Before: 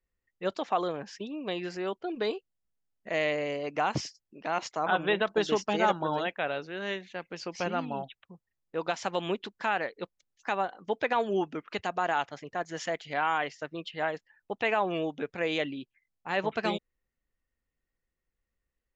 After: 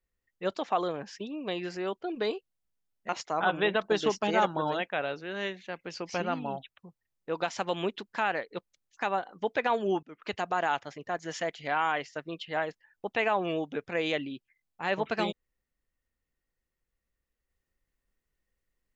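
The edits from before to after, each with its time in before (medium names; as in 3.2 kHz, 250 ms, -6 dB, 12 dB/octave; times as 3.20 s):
3.09–4.55 s: delete
11.49–11.78 s: fade in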